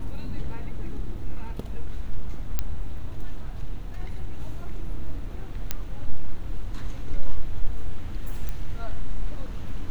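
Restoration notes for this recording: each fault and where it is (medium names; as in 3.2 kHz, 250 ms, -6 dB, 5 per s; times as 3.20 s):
2.59 s: pop -10 dBFS
5.71 s: pop -10 dBFS
8.49 s: pop -17 dBFS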